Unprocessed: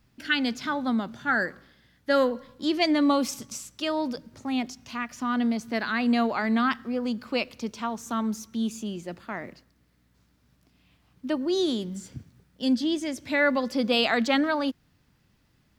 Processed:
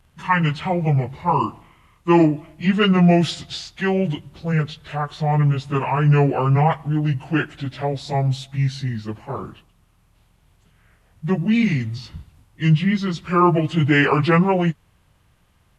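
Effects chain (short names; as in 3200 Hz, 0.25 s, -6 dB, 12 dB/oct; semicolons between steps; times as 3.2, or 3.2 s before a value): pitch shift by moving bins -8.5 st; gain +8.5 dB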